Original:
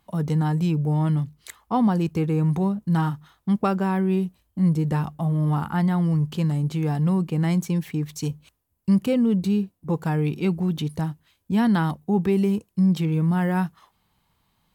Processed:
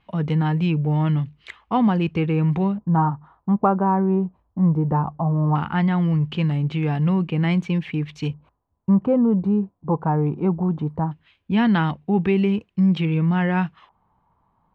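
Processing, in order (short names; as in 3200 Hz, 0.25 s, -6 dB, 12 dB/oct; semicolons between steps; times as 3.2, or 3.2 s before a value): vibrato 0.56 Hz 16 cents; LFO low-pass square 0.18 Hz 980–2700 Hz; gain +1.5 dB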